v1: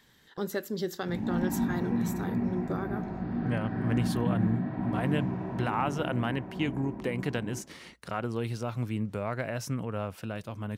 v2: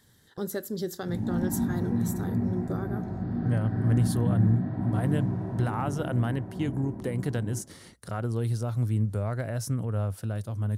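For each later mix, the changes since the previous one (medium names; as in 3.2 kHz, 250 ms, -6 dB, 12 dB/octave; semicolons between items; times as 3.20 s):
master: add fifteen-band graphic EQ 100 Hz +11 dB, 1 kHz -4 dB, 2.5 kHz -11 dB, 10 kHz +9 dB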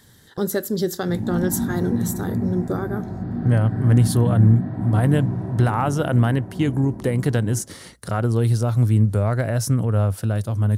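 speech +9.5 dB; background +3.5 dB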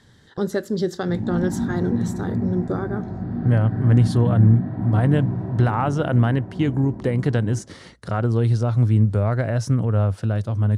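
master: add distance through air 97 m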